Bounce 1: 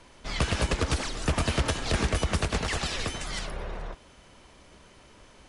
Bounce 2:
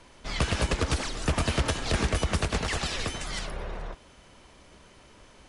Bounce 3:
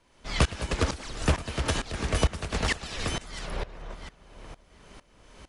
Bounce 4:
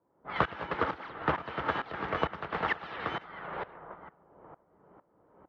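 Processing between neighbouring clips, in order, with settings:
nothing audible
darkening echo 0.692 s, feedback 40%, low-pass 2700 Hz, level -13.5 dB; dB-ramp tremolo swelling 2.2 Hz, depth 19 dB; gain +5.5 dB
tracing distortion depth 0.21 ms; speaker cabinet 220–2700 Hz, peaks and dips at 240 Hz -9 dB, 390 Hz -3 dB, 600 Hz -3 dB, 860 Hz +4 dB, 1300 Hz +5 dB, 2500 Hz -7 dB; low-pass opened by the level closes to 480 Hz, open at -31 dBFS

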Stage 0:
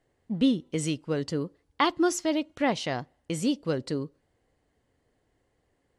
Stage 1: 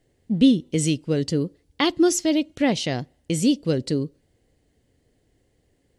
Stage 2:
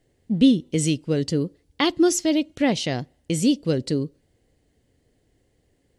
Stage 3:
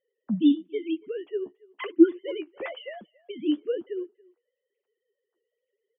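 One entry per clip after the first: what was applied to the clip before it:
bell 1100 Hz -13 dB 1.5 oct; gain +8.5 dB
nothing audible
sine-wave speech; flange 1 Hz, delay 5.3 ms, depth 9 ms, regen +31%; speakerphone echo 0.28 s, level -24 dB; gain -2 dB

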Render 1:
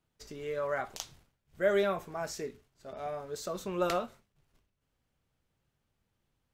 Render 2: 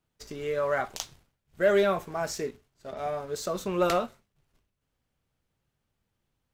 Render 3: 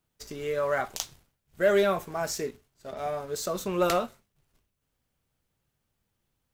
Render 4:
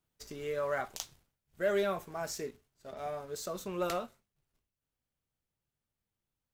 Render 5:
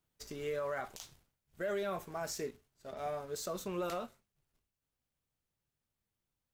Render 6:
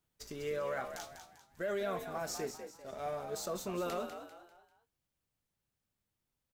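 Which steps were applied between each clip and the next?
sample leveller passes 1; gain +2 dB
high shelf 7600 Hz +7.5 dB
vocal rider within 5 dB 2 s; gain -8.5 dB
limiter -29.5 dBFS, peak gain reduction 11 dB
frequency-shifting echo 0.197 s, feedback 38%, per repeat +57 Hz, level -8.5 dB

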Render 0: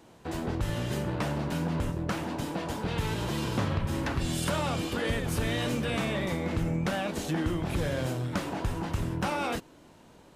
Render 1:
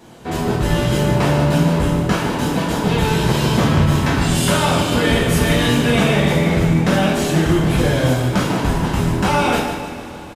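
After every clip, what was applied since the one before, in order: feedback echo 0.149 s, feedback 45%, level -9 dB; two-slope reverb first 0.54 s, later 4.2 s, from -18 dB, DRR -4.5 dB; gain +7.5 dB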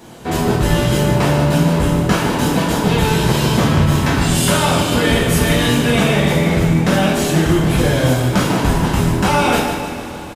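in parallel at +1 dB: vocal rider within 4 dB 0.5 s; on the sum: high shelf 7500 Hz +4.5 dB; gain -5 dB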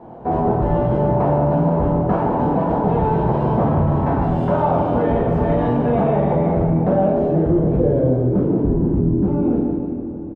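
low-pass sweep 780 Hz -> 320 Hz, 6.46–9.17; in parallel at +1 dB: limiter -10 dBFS, peak gain reduction 9.5 dB; on the sum: gain -8.5 dB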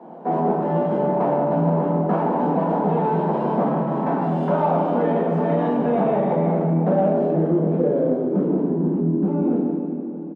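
Chebyshev high-pass 160 Hz, order 6; in parallel at -11.5 dB: soft clip -16 dBFS, distortion -14 dB; on the sum: gain -3 dB

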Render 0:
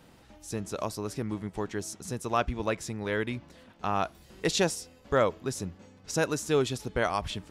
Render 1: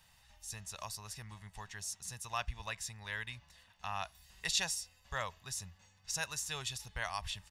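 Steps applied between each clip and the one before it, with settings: passive tone stack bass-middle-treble 10-0-10; comb 1.1 ms, depth 42%; gain -1.5 dB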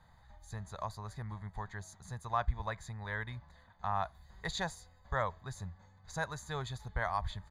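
running mean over 16 samples; gain +8 dB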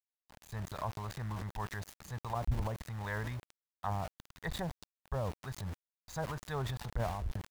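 treble ducked by the level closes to 440 Hz, closed at -31 dBFS; sample gate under -49 dBFS; transient shaper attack -4 dB, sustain +8 dB; gain +3.5 dB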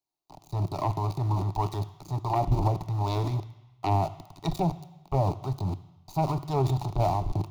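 self-modulated delay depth 0.38 ms; fixed phaser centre 330 Hz, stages 8; reverb RT60 1.0 s, pre-delay 3 ms, DRR 14 dB; gain +4.5 dB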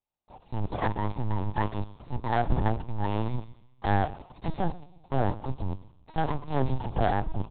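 tracing distortion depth 0.44 ms; echo 0.129 s -23 dB; LPC vocoder at 8 kHz pitch kept

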